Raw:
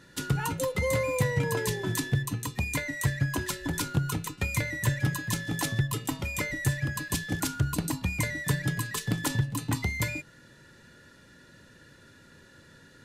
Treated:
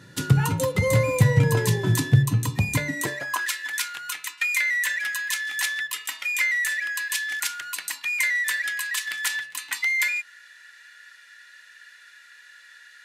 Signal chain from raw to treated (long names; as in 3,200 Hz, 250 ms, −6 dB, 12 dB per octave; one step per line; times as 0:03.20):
hum removal 71.67 Hz, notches 19
high-pass filter sweep 110 Hz → 1,900 Hz, 0:02.80–0:03.50
level +4.5 dB